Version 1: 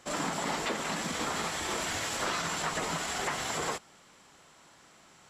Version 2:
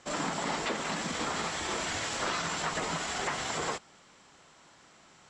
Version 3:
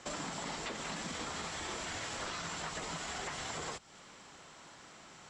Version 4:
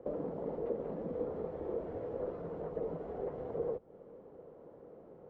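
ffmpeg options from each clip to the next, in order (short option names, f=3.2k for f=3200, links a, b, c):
-af "lowpass=f=8.1k:w=0.5412,lowpass=f=8.1k:w=1.3066"
-filter_complex "[0:a]acrossover=split=120|2700[a][b][c];[a]acompressor=threshold=-57dB:ratio=4[d];[b]acompressor=threshold=-46dB:ratio=4[e];[c]acompressor=threshold=-49dB:ratio=4[f];[d][e][f]amix=inputs=3:normalize=0,volume=3.5dB"
-af "lowpass=f=480:t=q:w=5.9"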